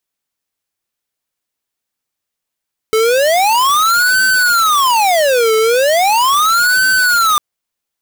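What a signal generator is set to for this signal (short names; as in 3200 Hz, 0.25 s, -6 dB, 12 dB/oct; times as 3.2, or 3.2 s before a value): siren wail 438–1530 Hz 0.38/s square -11.5 dBFS 4.45 s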